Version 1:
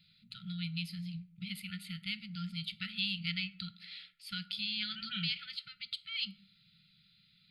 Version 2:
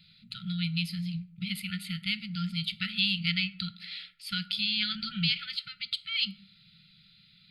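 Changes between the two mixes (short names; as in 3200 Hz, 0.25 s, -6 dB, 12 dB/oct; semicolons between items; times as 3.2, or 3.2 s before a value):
first voice +7.5 dB; second voice: add tilt -3.5 dB/oct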